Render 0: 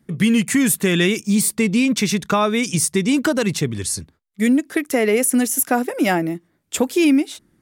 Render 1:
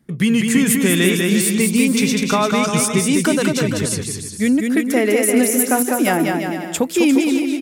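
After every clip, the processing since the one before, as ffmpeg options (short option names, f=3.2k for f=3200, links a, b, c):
-af "aecho=1:1:200|350|462.5|546.9|610.2:0.631|0.398|0.251|0.158|0.1"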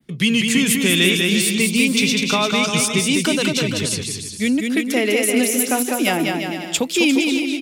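-filter_complex "[0:a]adynamicequalizer=threshold=0.0126:dfrequency=5500:dqfactor=0.98:tfrequency=5500:tqfactor=0.98:attack=5:release=100:ratio=0.375:range=2:mode=cutabove:tftype=bell,acrossover=split=180|1100|5900[a][b][c][d];[c]aexciter=amount=4.1:drive=6.2:freq=2.4k[e];[a][b][e][d]amix=inputs=4:normalize=0,volume=-3dB"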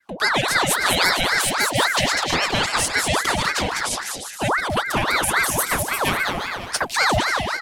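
-af "aeval=exprs='val(0)*sin(2*PI*1100*n/s+1100*0.7/3.7*sin(2*PI*3.7*n/s))':c=same"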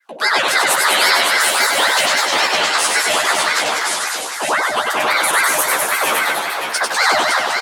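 -filter_complex "[0:a]highpass=450,asplit=2[a][b];[b]adelay=13,volume=-3dB[c];[a][c]amix=inputs=2:normalize=0,asplit=2[d][e];[e]aecho=0:1:96|310|560:0.668|0.15|0.501[f];[d][f]amix=inputs=2:normalize=0,volume=1.5dB"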